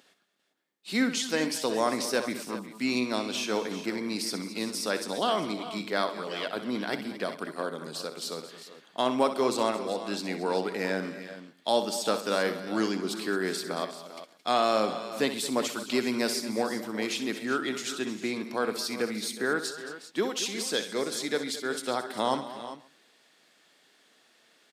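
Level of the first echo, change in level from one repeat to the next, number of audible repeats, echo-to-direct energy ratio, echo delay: -11.0 dB, no steady repeat, 6, -7.0 dB, 64 ms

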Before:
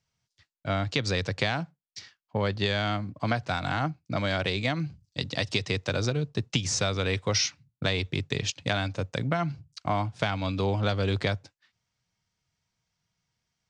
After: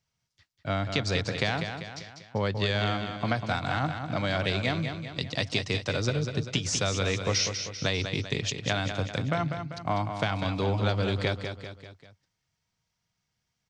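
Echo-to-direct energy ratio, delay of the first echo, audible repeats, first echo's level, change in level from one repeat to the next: -6.5 dB, 0.196 s, 4, -7.5 dB, -6.0 dB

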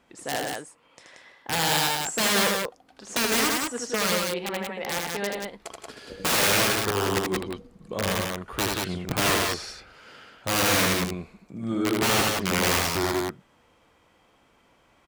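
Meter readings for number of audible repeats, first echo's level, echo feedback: 2, -3.5 dB, no steady repeat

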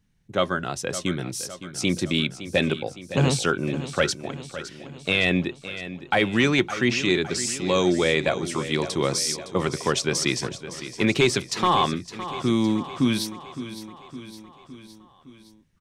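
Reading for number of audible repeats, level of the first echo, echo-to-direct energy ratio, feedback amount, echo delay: 5, -13.0 dB, -11.0 dB, 58%, 0.562 s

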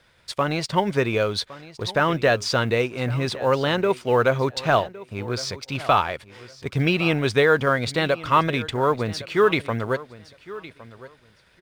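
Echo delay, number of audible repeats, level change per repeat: 1.112 s, 2, -14.5 dB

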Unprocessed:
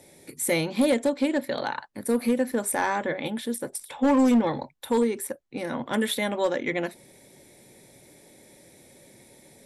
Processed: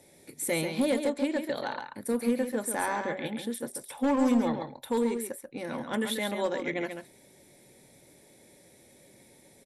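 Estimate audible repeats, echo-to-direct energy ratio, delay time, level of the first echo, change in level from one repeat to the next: 1, -7.0 dB, 0.137 s, -7.0 dB, no steady repeat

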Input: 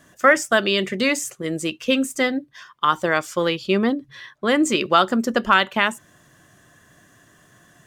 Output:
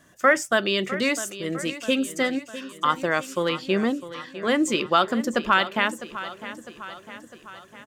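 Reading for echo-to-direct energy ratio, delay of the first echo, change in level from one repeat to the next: -12.5 dB, 0.654 s, -5.0 dB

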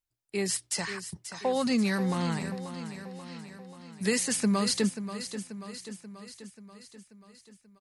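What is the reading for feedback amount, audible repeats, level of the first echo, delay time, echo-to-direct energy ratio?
59%, 6, -11.0 dB, 0.535 s, -9.0 dB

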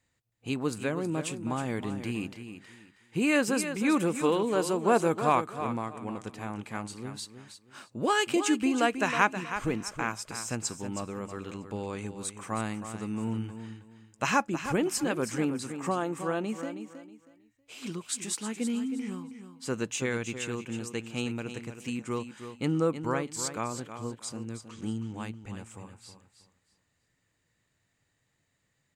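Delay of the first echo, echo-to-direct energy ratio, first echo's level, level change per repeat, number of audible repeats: 0.319 s, -9.5 dB, -10.0 dB, -12.0 dB, 3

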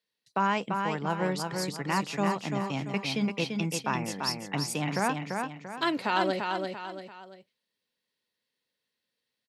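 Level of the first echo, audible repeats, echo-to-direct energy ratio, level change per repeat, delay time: -4.5 dB, 3, -4.0 dB, -8.0 dB, 0.341 s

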